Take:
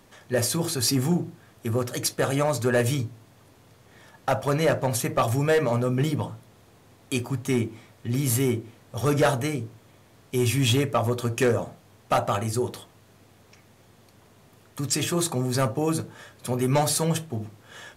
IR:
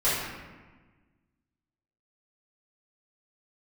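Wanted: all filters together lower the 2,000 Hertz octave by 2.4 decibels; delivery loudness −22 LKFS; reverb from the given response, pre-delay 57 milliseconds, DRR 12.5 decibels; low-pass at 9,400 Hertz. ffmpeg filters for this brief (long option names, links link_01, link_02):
-filter_complex "[0:a]lowpass=9400,equalizer=frequency=2000:width_type=o:gain=-3,asplit=2[link_01][link_02];[1:a]atrim=start_sample=2205,adelay=57[link_03];[link_02][link_03]afir=irnorm=-1:irlink=0,volume=-26dB[link_04];[link_01][link_04]amix=inputs=2:normalize=0,volume=3.5dB"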